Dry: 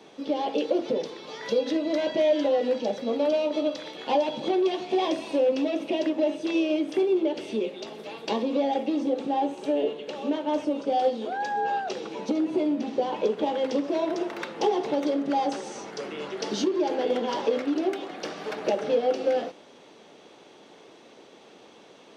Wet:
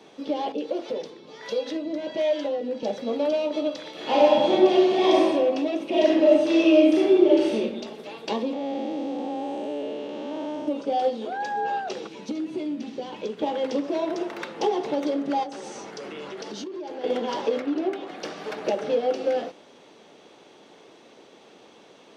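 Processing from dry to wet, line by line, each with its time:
0.52–2.83 harmonic tremolo 1.4 Hz, crossover 430 Hz
3.91–5.2 reverb throw, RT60 1.5 s, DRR -5.5 dB
5.9–7.56 reverb throw, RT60 1 s, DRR -5.5 dB
8.53–10.68 time blur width 0.407 s
12.07–13.42 bell 690 Hz -9.5 dB 2.1 oct
15.43–17.04 compressor, threshold -32 dBFS
17.6–18.08 high shelf 5100 Hz -11.5 dB

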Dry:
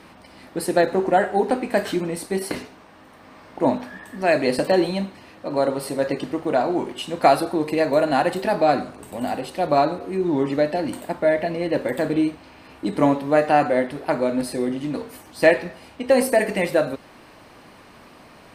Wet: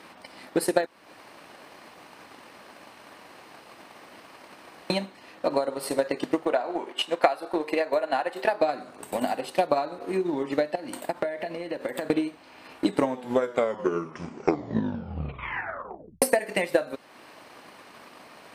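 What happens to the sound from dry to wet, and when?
0.86–4.9 room tone
6.45–8.61 tone controls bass -14 dB, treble -7 dB
10.75–12.1 compressor 12:1, threshold -27 dBFS
12.85 tape stop 3.37 s
whole clip: HPF 410 Hz 6 dB/oct; compressor 4:1, threshold -26 dBFS; transient shaper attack +9 dB, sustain -4 dB

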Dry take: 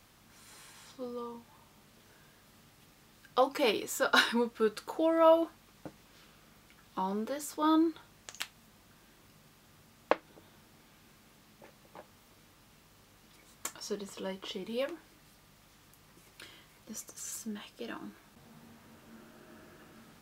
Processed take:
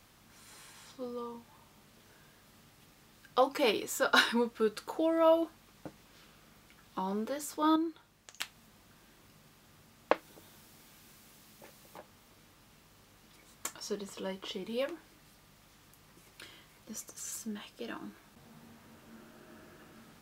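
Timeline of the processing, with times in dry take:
4.57–7.07 dynamic EQ 1200 Hz, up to -4 dB, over -36 dBFS, Q 0.75
7.76–8.4 gain -6 dB
10.14–11.98 high shelf 4600 Hz +8 dB

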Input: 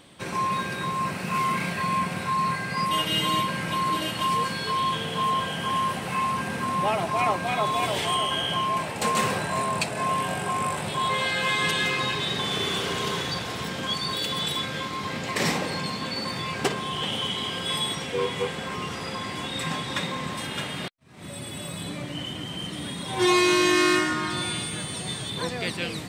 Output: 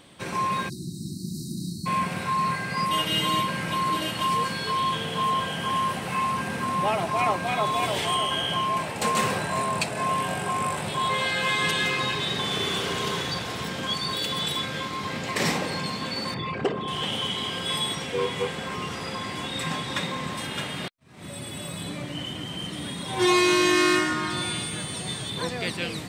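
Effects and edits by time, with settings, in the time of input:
0.69–1.86 spectral delete 370–3800 Hz
16.34–16.88 formant sharpening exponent 2

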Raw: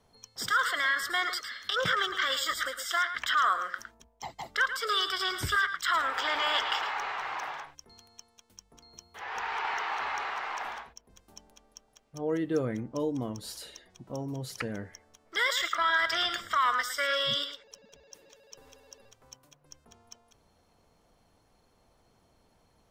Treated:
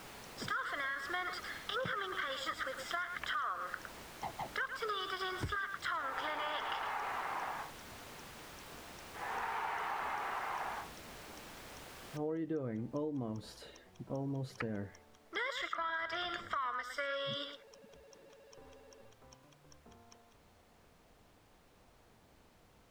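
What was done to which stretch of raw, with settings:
7.46–9.25 notch 4100 Hz, Q 5.6
12.17 noise floor step -42 dB -60 dB
whole clip: LPF 1200 Hz 6 dB/oct; compressor, threshold -36 dBFS; gain +1 dB

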